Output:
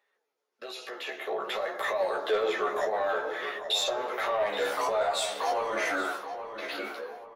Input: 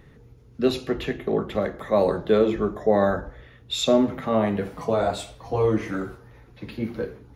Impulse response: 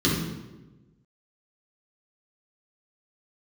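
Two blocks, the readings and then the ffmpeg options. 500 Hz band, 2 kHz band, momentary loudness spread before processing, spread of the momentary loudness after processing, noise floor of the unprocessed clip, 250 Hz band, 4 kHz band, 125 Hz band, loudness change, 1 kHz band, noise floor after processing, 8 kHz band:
-7.0 dB, +4.0 dB, 12 LU, 10 LU, -51 dBFS, -19.0 dB, +0.5 dB, under -25 dB, -6.0 dB, 0.0 dB, -80 dBFS, +1.0 dB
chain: -filter_complex "[0:a]highpass=f=560:w=0.5412,highpass=f=560:w=1.3066,agate=range=-18dB:threshold=-53dB:ratio=16:detection=peak,acompressor=threshold=-37dB:ratio=16,alimiter=level_in=13.5dB:limit=-24dB:level=0:latency=1:release=13,volume=-13.5dB,dynaudnorm=f=210:g=13:m=15dB,flanger=delay=4.9:depth=9.7:regen=52:speed=0.53:shape=sinusoidal,asoftclip=type=tanh:threshold=-27.5dB,asplit=2[a][b];[b]adelay=14,volume=-4dB[c];[a][c]amix=inputs=2:normalize=0,asplit=2[d][e];[e]adelay=826,lowpass=f=2.6k:p=1,volume=-9dB,asplit=2[f][g];[g]adelay=826,lowpass=f=2.6k:p=1,volume=0.41,asplit=2[h][i];[i]adelay=826,lowpass=f=2.6k:p=1,volume=0.41,asplit=2[j][k];[k]adelay=826,lowpass=f=2.6k:p=1,volume=0.41,asplit=2[l][m];[m]adelay=826,lowpass=f=2.6k:p=1,volume=0.41[n];[d][f][h][j][l][n]amix=inputs=6:normalize=0,asplit=2[o][p];[1:a]atrim=start_sample=2205[q];[p][q]afir=irnorm=-1:irlink=0,volume=-34.5dB[r];[o][r]amix=inputs=2:normalize=0,volume=5.5dB"

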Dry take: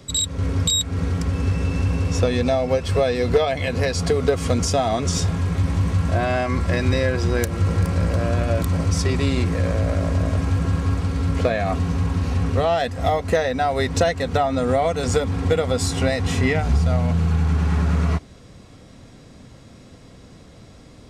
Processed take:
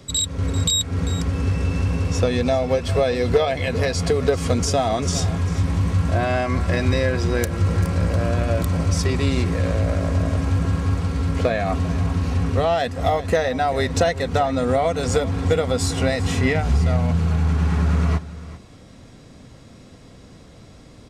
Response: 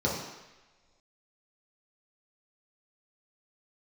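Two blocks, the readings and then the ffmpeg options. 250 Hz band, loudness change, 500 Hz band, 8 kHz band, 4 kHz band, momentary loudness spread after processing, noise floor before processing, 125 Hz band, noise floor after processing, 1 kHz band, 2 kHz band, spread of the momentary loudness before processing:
0.0 dB, 0.0 dB, 0.0 dB, 0.0 dB, 0.0 dB, 3 LU, -45 dBFS, 0.0 dB, -45 dBFS, 0.0 dB, 0.0 dB, 3 LU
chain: -af "aecho=1:1:394:0.158"

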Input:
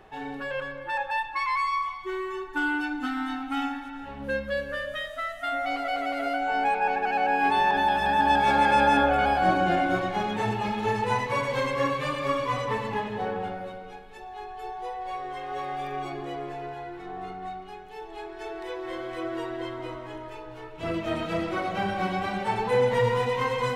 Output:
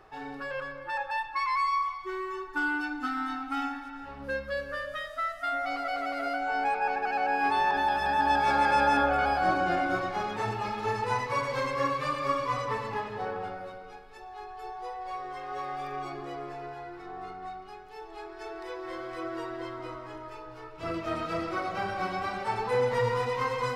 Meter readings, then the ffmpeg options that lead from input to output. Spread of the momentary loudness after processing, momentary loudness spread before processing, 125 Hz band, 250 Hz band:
16 LU, 16 LU, -5.0 dB, -5.5 dB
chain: -af "equalizer=f=200:t=o:w=0.33:g=-8,equalizer=f=1.25k:t=o:w=0.33:g=8,equalizer=f=3.15k:t=o:w=0.33:g=-4,equalizer=f=5k:t=o:w=0.33:g=8,volume=-4dB"

